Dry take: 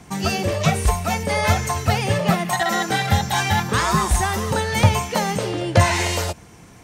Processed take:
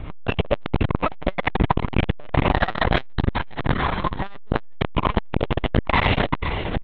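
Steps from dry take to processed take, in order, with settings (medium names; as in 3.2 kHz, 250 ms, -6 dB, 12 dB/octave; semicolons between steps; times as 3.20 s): high-pass 54 Hz 12 dB/octave; bass shelf 170 Hz +9.5 dB; band-stop 810 Hz, Q 24; de-hum 87.16 Hz, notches 18; 3.28–4.34 s: compressor with a negative ratio -26 dBFS, ratio -0.5; feedback comb 150 Hz, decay 0.56 s, harmonics all, mix 50%; feedback delay 491 ms, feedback 55%, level -13 dB; LPC vocoder at 8 kHz pitch kept; loudness maximiser +14.5 dB; transformer saturation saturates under 290 Hz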